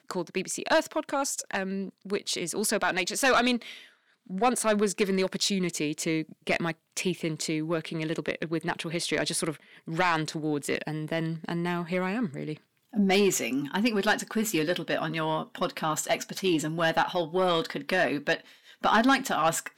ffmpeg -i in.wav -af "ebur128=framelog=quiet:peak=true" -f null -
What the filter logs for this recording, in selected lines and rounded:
Integrated loudness:
  I:         -27.9 LUFS
  Threshold: -38.1 LUFS
Loudness range:
  LRA:         3.7 LU
  Threshold: -48.3 LUFS
  LRA low:   -30.3 LUFS
  LRA high:  -26.6 LUFS
True peak:
  Peak:      -15.5 dBFS